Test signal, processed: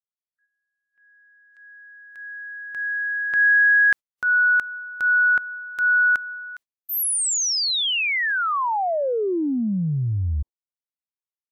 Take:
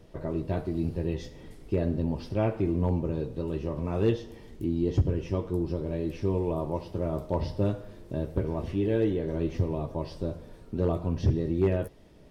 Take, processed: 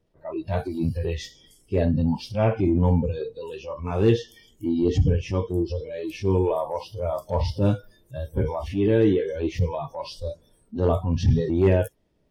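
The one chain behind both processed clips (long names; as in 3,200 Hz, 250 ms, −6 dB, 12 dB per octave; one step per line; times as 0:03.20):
noise reduction from a noise print of the clip's start 25 dB
transient designer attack −6 dB, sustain +3 dB
level +8 dB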